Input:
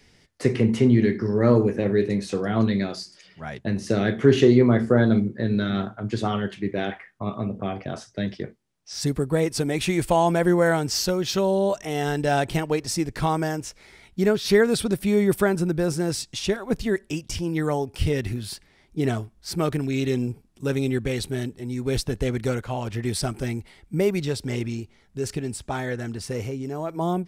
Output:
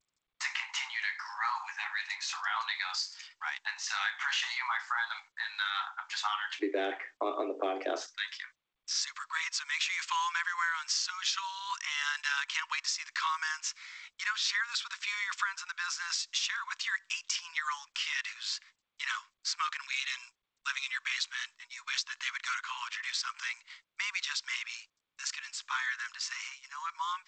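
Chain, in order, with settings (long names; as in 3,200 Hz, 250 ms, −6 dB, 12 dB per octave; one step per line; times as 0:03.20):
Butterworth high-pass 840 Hz 96 dB per octave, from 0:06.59 290 Hz, from 0:08.06 1,000 Hz
noise gate −52 dBFS, range −49 dB
downward compressor 8 to 1, threshold −32 dBFS, peak gain reduction 10 dB
level +4 dB
G.722 64 kbit/s 16,000 Hz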